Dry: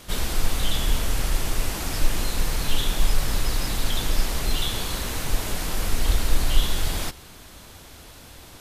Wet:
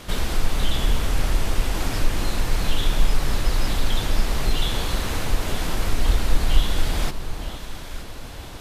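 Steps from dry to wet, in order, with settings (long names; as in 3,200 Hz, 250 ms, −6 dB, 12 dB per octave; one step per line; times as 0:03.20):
high-shelf EQ 5,400 Hz −8.5 dB
in parallel at +1 dB: downward compressor, threshold −32 dBFS, peak gain reduction 20.5 dB
on the sum: delay that swaps between a low-pass and a high-pass 460 ms, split 1,100 Hz, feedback 56%, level −7.5 dB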